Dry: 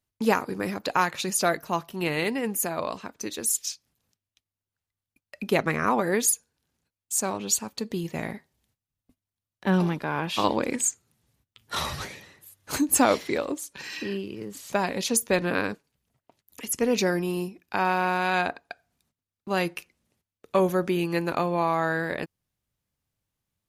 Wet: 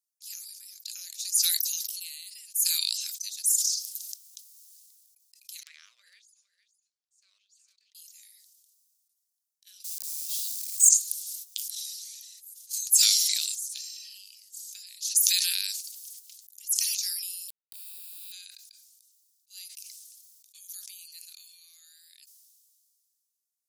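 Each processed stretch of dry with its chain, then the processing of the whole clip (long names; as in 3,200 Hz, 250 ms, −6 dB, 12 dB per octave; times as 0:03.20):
0:05.63–0:07.95: four-pole ladder band-pass 670 Hz, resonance 45% + downward compressor 10 to 1, threshold −43 dBFS + single-tap delay 459 ms −15.5 dB
0:09.84–0:10.89: bit-depth reduction 6 bits, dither none + high-shelf EQ 5,700 Hz +9 dB
0:17.48–0:18.32: bit-depth reduction 6 bits, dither none + phaser with its sweep stopped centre 1,300 Hz, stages 8
whole clip: inverse Chebyshev high-pass filter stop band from 900 Hz, stop band 80 dB; level that may fall only so fast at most 26 dB per second; level +1.5 dB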